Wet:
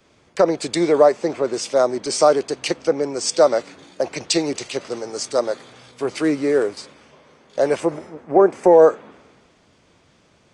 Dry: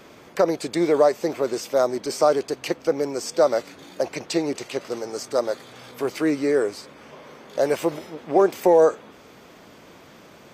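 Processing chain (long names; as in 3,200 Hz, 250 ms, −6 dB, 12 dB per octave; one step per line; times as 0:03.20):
0:06.24–0:06.77: gap after every zero crossing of 0.059 ms
0:07.80–0:08.73: parametric band 3,500 Hz −9 dB 1.1 octaves
in parallel at +2 dB: downward compressor, threshold −26 dBFS, peak gain reduction 13.5 dB
on the sum: downsampling to 22,050 Hz
multiband upward and downward expander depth 70%
level −1 dB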